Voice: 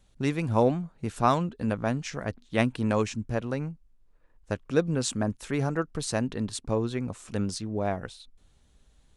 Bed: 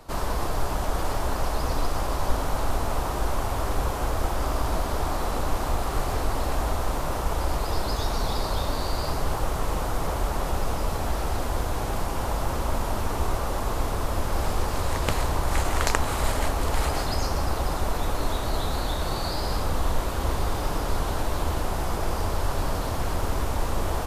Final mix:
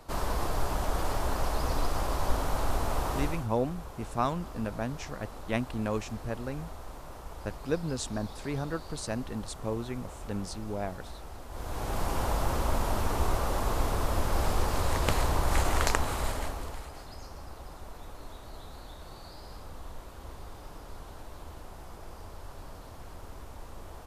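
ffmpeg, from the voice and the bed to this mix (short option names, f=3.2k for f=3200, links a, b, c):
-filter_complex "[0:a]adelay=2950,volume=-6dB[a];[1:a]volume=11.5dB,afade=t=out:st=3.17:d=0.3:silence=0.211349,afade=t=in:st=11.49:d=0.61:silence=0.177828,afade=t=out:st=15.71:d=1.13:silence=0.149624[b];[a][b]amix=inputs=2:normalize=0"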